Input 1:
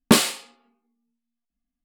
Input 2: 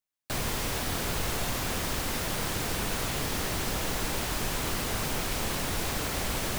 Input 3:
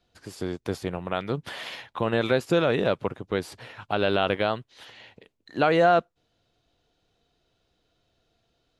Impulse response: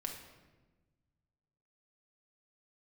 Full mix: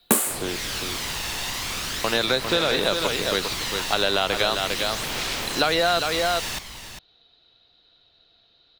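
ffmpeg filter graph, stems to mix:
-filter_complex "[0:a]aexciter=amount=7.6:drive=6.5:freq=7100,volume=2.5dB[link_01];[1:a]equalizer=frequency=3800:width_type=o:width=2.5:gain=10.5,aphaser=in_gain=1:out_gain=1:delay=1.1:decay=0.37:speed=0.38:type=sinusoidal,volume=-4dB,asplit=2[link_02][link_03];[link_03]volume=-10dB[link_04];[2:a]lowpass=frequency=4000:width_type=q:width=9.7,equalizer=frequency=1400:width_type=o:width=2.8:gain=7,volume=-1dB,asplit=3[link_05][link_06][link_07];[link_05]atrim=end=0.66,asetpts=PTS-STARTPTS,afade=type=out:start_time=0.656:duration=0.004:curve=hsin[link_08];[link_06]atrim=start=0.66:end=2.04,asetpts=PTS-STARTPTS,volume=0[link_09];[link_07]atrim=start=2.04,asetpts=PTS-STARTPTS,afade=type=in:duration=0.004:curve=hsin[link_10];[link_08][link_09][link_10]concat=n=3:v=0:a=1,asplit=2[link_11][link_12];[link_12]volume=-7dB[link_13];[link_04][link_13]amix=inputs=2:normalize=0,aecho=0:1:402:1[link_14];[link_01][link_02][link_11][link_14]amix=inputs=4:normalize=0,acrossover=split=210|1800[link_15][link_16][link_17];[link_15]acompressor=threshold=-37dB:ratio=4[link_18];[link_16]acompressor=threshold=-21dB:ratio=4[link_19];[link_17]acompressor=threshold=-23dB:ratio=4[link_20];[link_18][link_19][link_20]amix=inputs=3:normalize=0"

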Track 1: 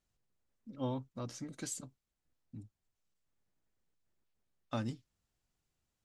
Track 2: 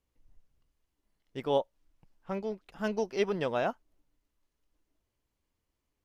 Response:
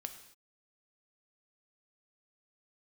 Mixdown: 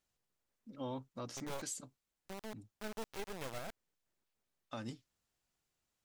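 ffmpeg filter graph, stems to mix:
-filter_complex "[0:a]lowshelf=frequency=230:gain=-9.5,volume=1.5dB[link_01];[1:a]lowshelf=frequency=270:gain=-5.5,acrusher=bits=3:dc=4:mix=0:aa=0.000001,volume=-8dB[link_02];[link_01][link_02]amix=inputs=2:normalize=0,alimiter=level_in=7dB:limit=-24dB:level=0:latency=1:release=185,volume=-7dB"

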